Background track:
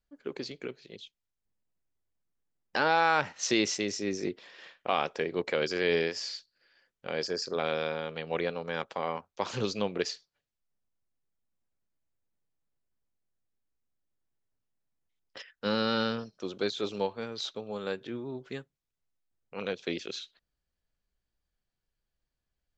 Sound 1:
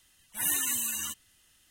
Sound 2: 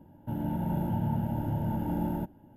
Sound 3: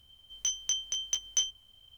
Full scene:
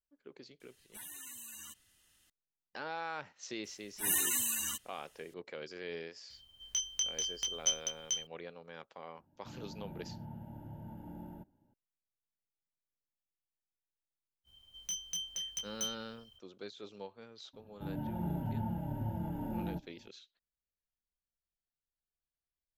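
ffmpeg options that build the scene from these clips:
-filter_complex "[1:a]asplit=2[a][b];[3:a]asplit=2[c][d];[2:a]asplit=2[e][f];[0:a]volume=-15.5dB[g];[a]acompressor=threshold=-40dB:ratio=6:attack=3.2:release=140:knee=1:detection=peak[h];[c]aecho=1:1:438:0.668[i];[d]asoftclip=type=tanh:threshold=-28dB[j];[f]asplit=2[k][l];[l]adelay=4.8,afreqshift=-2.1[m];[k][m]amix=inputs=2:normalize=1[n];[h]atrim=end=1.7,asetpts=PTS-STARTPTS,volume=-5.5dB,afade=t=in:d=0.004:c=hsin,afade=t=out:st=1.696:d=0.004:c=hsin,adelay=600[o];[b]atrim=end=1.7,asetpts=PTS-STARTPTS,volume=-2.5dB,afade=t=in:d=0.004:c=hsin,afade=t=out:st=1.696:d=0.004:c=hsin,adelay=3640[p];[i]atrim=end=1.97,asetpts=PTS-STARTPTS,volume=-3.5dB,afade=t=in:d=0.004:c=hsin,afade=t=out:st=1.966:d=0.004:c=hsin,adelay=6300[q];[e]atrim=end=2.56,asetpts=PTS-STARTPTS,volume=-17dB,afade=t=in:d=0.004:c=hsin,afade=t=out:st=2.556:d=0.004:c=hsin,adelay=9180[r];[j]atrim=end=1.97,asetpts=PTS-STARTPTS,volume=-4dB,afade=t=in:d=0.05,afade=t=out:st=1.92:d=0.05,adelay=636804S[s];[n]atrim=end=2.56,asetpts=PTS-STARTPTS,volume=-4dB,afade=t=in:d=0.004:c=hsin,afade=t=out:st=2.556:d=0.004:c=hsin,adelay=17530[t];[g][o][p][q][r][s][t]amix=inputs=7:normalize=0"

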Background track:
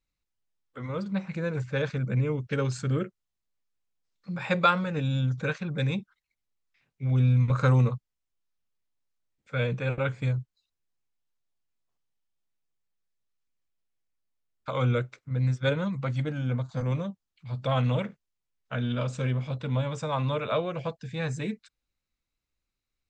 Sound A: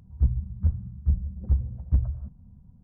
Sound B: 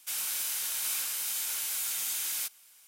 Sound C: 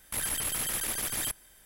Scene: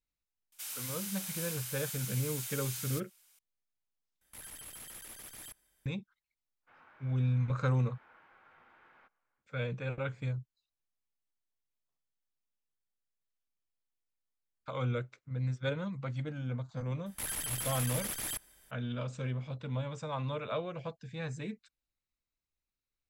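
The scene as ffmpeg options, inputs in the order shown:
-filter_complex "[2:a]asplit=2[a][b];[3:a]asplit=2[c][d];[0:a]volume=-8dB[e];[b]lowpass=f=1.5k:w=0.5412,lowpass=f=1.5k:w=1.3066[f];[e]asplit=2[g][h];[g]atrim=end=4.214[i];[c]atrim=end=1.65,asetpts=PTS-STARTPTS,volume=-16.5dB[j];[h]atrim=start=5.856[k];[a]atrim=end=2.87,asetpts=PTS-STARTPTS,volume=-8dB,afade=t=in:d=0.004:c=hsin,afade=t=out:st=2.866:d=0.004:c=hsin,adelay=520[l];[f]atrim=end=2.87,asetpts=PTS-STARTPTS,volume=-9dB,afade=t=in:d=0.1,afade=t=out:st=2.77:d=0.1,adelay=6600[m];[d]atrim=end=1.65,asetpts=PTS-STARTPTS,volume=-5.5dB,afade=t=in:d=0.004:c=hsin,afade=t=out:st=1.646:d=0.004:c=hsin,adelay=17060[n];[i][j]acrossfade=d=0.004:c1=hsin:c2=hsin[o];[o][k]acrossfade=d=0.004:c1=hsin:c2=hsin[p];[p][l][m][n]amix=inputs=4:normalize=0"

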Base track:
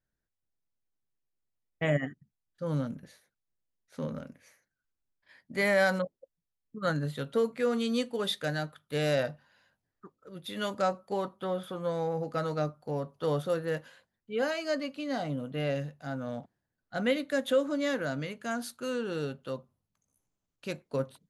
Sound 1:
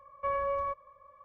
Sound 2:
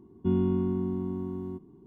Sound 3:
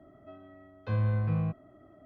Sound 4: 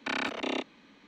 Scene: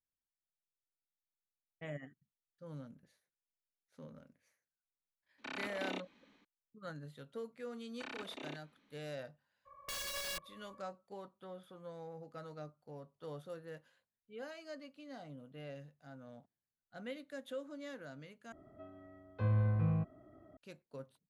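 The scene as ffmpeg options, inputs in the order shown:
-filter_complex "[4:a]asplit=2[a][b];[0:a]volume=-17dB[c];[a]dynaudnorm=f=140:g=3:m=4.5dB[d];[1:a]aeval=exprs='(mod(42.2*val(0)+1,2)-1)/42.2':c=same[e];[3:a]highshelf=f=3.7k:g=-11[f];[c]asplit=2[g][h];[g]atrim=end=18.524[i];[f]atrim=end=2.05,asetpts=PTS-STARTPTS,volume=-3.5dB[j];[h]atrim=start=20.566[k];[d]atrim=end=1.07,asetpts=PTS-STARTPTS,volume=-14dB,afade=t=in:d=0.004:c=hsin,afade=t=out:st=1.066:d=0.004:c=hsin,adelay=5380[l];[b]atrim=end=1.07,asetpts=PTS-STARTPTS,volume=-15.5dB,afade=t=in:d=0.004:c=hsin,afade=t=out:st=1.066:d=0.004:c=hsin,adelay=350154S[m];[e]atrim=end=1.24,asetpts=PTS-STARTPTS,volume=-4dB,afade=t=in:d=0.02,afade=t=out:st=1.22:d=0.02,adelay=9650[n];[i][j]acrossfade=d=0.004:c1=hsin:c2=hsin[o];[o][k]acrossfade=d=0.004:c1=hsin:c2=hsin[p];[p][l][m][n]amix=inputs=4:normalize=0"

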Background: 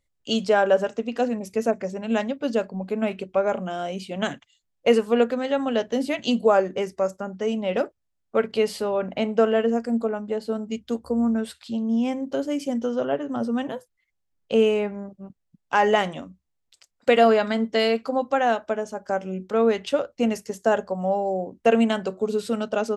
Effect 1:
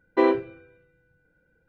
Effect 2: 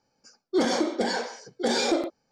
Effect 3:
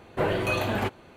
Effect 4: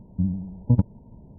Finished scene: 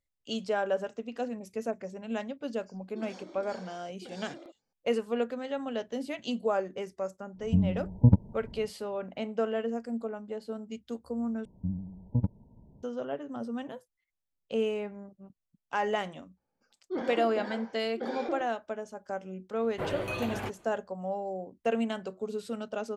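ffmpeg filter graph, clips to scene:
-filter_complex "[2:a]asplit=2[a][b];[4:a]asplit=2[c][d];[0:a]volume=-10.5dB[e];[a]acompressor=threshold=-30dB:ratio=10:attack=1.1:release=149:knee=1:detection=rms[f];[b]lowpass=2.1k[g];[e]asplit=2[h][i];[h]atrim=end=11.454[j];[d]atrim=end=1.38,asetpts=PTS-STARTPTS,volume=-9dB[k];[i]atrim=start=12.826[l];[f]atrim=end=2.31,asetpts=PTS-STARTPTS,volume=-12dB,afade=t=in:d=0.004:c=hsin,afade=t=out:st=2.306:d=0.004:c=hsin,adelay=2420[m];[c]atrim=end=1.38,asetpts=PTS-STARTPTS,volume=-0.5dB,afade=t=in:d=0.1,afade=t=out:st=1.28:d=0.1,adelay=7340[n];[g]atrim=end=2.31,asetpts=PTS-STARTPTS,volume=-10.5dB,afade=t=in:d=0.004:c=hsin,afade=t=out:st=2.306:d=0.004:c=hsin,adelay=16370[o];[3:a]atrim=end=1.16,asetpts=PTS-STARTPTS,volume=-8.5dB,afade=t=in:d=0.004:c=hsin,afade=t=out:st=1.156:d=0.004:c=hsin,adelay=19610[p];[j][k]acrossfade=d=0.004:c1=hsin:c2=hsin[q];[q][l]acrossfade=d=0.004:c1=hsin:c2=hsin[r];[r][m][n][o][p]amix=inputs=5:normalize=0"

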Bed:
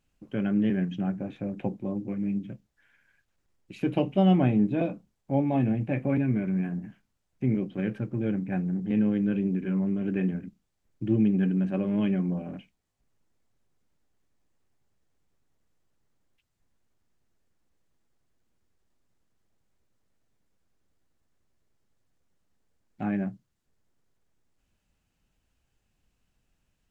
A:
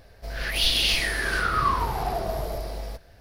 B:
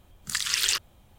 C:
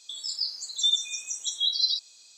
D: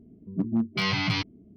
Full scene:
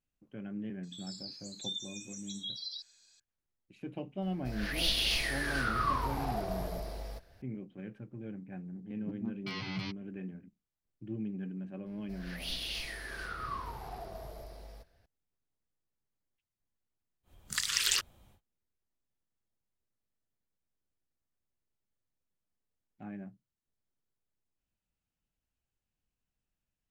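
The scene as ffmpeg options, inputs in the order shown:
-filter_complex "[1:a]asplit=2[a][b];[0:a]volume=-15dB[c];[3:a]acrossover=split=3000[d][e];[e]acompressor=threshold=-31dB:ratio=4:attack=1:release=60[f];[d][f]amix=inputs=2:normalize=0,atrim=end=2.37,asetpts=PTS-STARTPTS,volume=-11dB,afade=t=in:d=0.004:c=hsin,afade=t=out:st=2.366:d=0.004:c=hsin,adelay=830[g];[a]atrim=end=3.2,asetpts=PTS-STARTPTS,volume=-8dB,afade=t=in:d=0.004:c=hsin,afade=t=out:st=3.196:d=0.004:c=hsin,adelay=4220[h];[4:a]atrim=end=1.56,asetpts=PTS-STARTPTS,volume=-14dB,afade=t=in:d=0.004:c=hsin,afade=t=out:st=1.556:d=0.004:c=hsin,adelay=8690[i];[b]atrim=end=3.2,asetpts=PTS-STARTPTS,volume=-16dB,afade=t=in:d=0.004:c=hsin,afade=t=out:st=3.196:d=0.004:c=hsin,adelay=523026S[j];[2:a]atrim=end=1.18,asetpts=PTS-STARTPTS,volume=-4.5dB,afade=t=in:d=0.1,afade=t=out:st=1.08:d=0.1,adelay=17230[k];[c][g][h][i][j][k]amix=inputs=6:normalize=0"

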